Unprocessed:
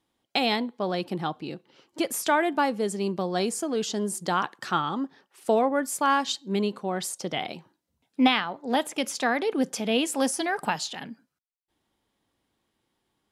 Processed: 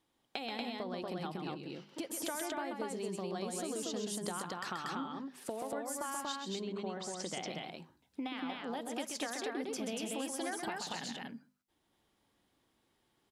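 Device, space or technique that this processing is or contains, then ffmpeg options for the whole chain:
serial compression, peaks first: -filter_complex "[0:a]bandreject=f=50:t=h:w=6,bandreject=f=100:t=h:w=6,bandreject=f=150:t=h:w=6,bandreject=f=200:t=h:w=6,bandreject=f=250:t=h:w=6,asettb=1/sr,asplit=3[s0][s1][s2];[s0]atrim=end=6.544[s3];[s1]atrim=start=6.54:end=7.27,asetpts=PTS-STARTPTS,afade=t=in:d=0.004:c=qsin,afade=t=out:st=0.726:d=0.004:c=qsin,lowpass=f=7200:w=0.5412,lowpass=f=7200:w=1.3066[s4];[s2]atrim=start=7.266[s5];[s3][s4]acrossfade=d=0.004:c1=hsin:c2=qsin[s6];[s6][s5]acrossfade=d=0.004:c1=qsin:c2=hsin,acompressor=threshold=0.0251:ratio=6,acompressor=threshold=0.00794:ratio=1.5,aecho=1:1:131.2|236.2:0.501|0.794,volume=0.794"

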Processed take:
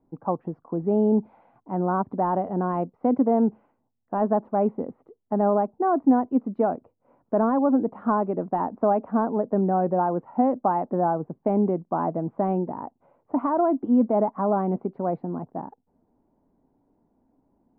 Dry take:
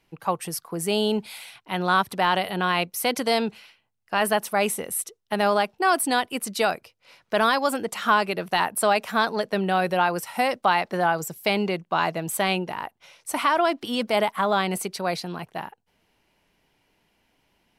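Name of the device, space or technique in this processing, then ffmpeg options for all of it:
under water: -af "lowpass=f=930:w=0.5412,lowpass=f=930:w=1.3066,equalizer=f=260:t=o:w=0.54:g=11.5"

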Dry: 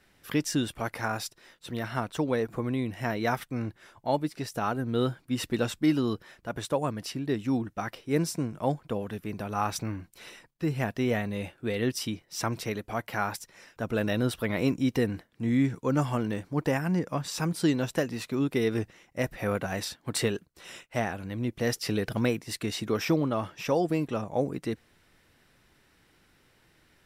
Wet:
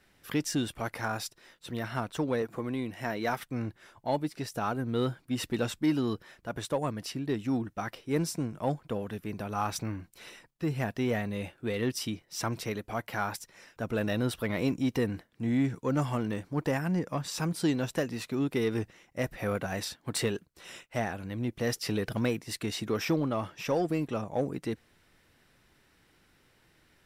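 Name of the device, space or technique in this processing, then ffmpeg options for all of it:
parallel distortion: -filter_complex "[0:a]asettb=1/sr,asplit=3[s0][s1][s2];[s0]atrim=end=2.424[s3];[s1]atrim=start=2.42:end=3.43,asetpts=PTS-STARTPTS,afade=t=in:d=0.004:c=qsin,afade=t=out:st=1.006:d=0.004:c=qsin,highpass=f=180:p=1[s4];[s2]atrim=start=3.426[s5];[s3][s4]acrossfade=d=0.004:c1=hsin:c2=qsin[s6];[s6][s5]acrossfade=d=0.004:c1=qsin:c2=hsin,asplit=2[s7][s8];[s8]asoftclip=type=hard:threshold=0.0501,volume=0.422[s9];[s7][s9]amix=inputs=2:normalize=0,volume=0.596"

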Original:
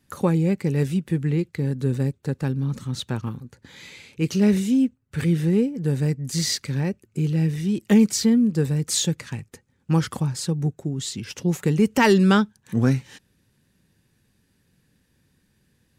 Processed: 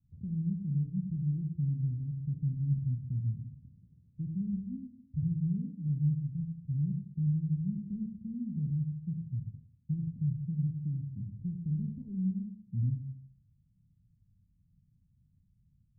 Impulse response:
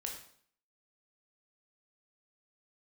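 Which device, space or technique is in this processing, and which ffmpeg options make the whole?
club heard from the street: -filter_complex "[0:a]alimiter=limit=0.126:level=0:latency=1:release=479,lowpass=f=160:w=0.5412,lowpass=f=160:w=1.3066[s0];[1:a]atrim=start_sample=2205[s1];[s0][s1]afir=irnorm=-1:irlink=0,equalizer=f=500:w=1.5:g=-3.5,volume=1.26"

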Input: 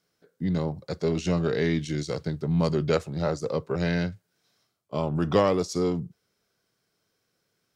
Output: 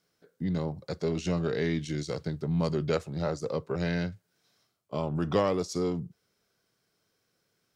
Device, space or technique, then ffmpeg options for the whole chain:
parallel compression: -filter_complex "[0:a]asplit=2[s0][s1];[s1]acompressor=threshold=0.0178:ratio=6,volume=0.841[s2];[s0][s2]amix=inputs=2:normalize=0,volume=0.531"

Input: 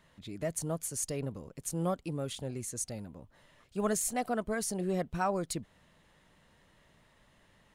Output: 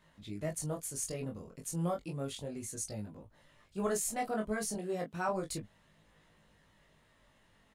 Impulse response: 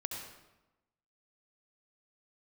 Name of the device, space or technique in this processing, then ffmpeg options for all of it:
double-tracked vocal: -filter_complex "[0:a]asettb=1/sr,asplit=3[s0][s1][s2];[s0]atrim=end=4.754[s3];[s1]atrim=start=4.75:end=5.29,asetpts=PTS-STARTPTS,afade=t=in:d=0.004:c=qsin,afade=t=out:st=0.536:d=0.004:c=qsin,highpass=170[s4];[s2]atrim=start=5.286[s5];[s3][s4]acrossfade=d=0.004:c1=hsin:c2=qsin[s6];[s6][s5]acrossfade=d=0.004:c1=qsin:c2=hsin,asplit=2[s7][s8];[s8]adelay=19,volume=0.398[s9];[s7][s9]amix=inputs=2:normalize=0,flanger=delay=19:depth=4.5:speed=0.32"

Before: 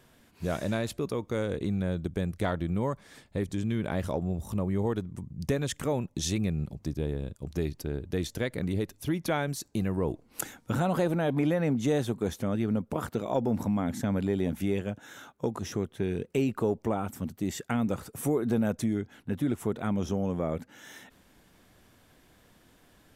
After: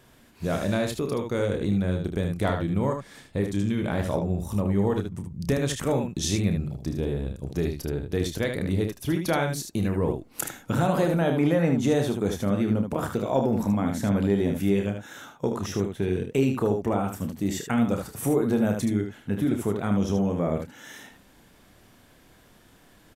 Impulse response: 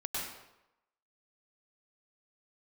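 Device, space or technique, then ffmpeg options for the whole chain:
slapback doubling: -filter_complex "[0:a]asplit=3[s0][s1][s2];[s1]adelay=30,volume=0.398[s3];[s2]adelay=76,volume=0.501[s4];[s0][s3][s4]amix=inputs=3:normalize=0,volume=1.41"

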